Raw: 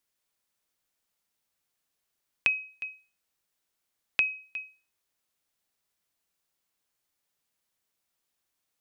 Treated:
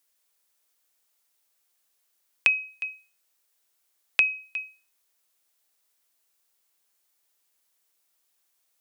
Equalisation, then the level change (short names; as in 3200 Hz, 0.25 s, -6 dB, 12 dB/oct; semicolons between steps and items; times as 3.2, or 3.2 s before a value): HPF 320 Hz 12 dB/oct; high shelf 5900 Hz +7 dB; +3.5 dB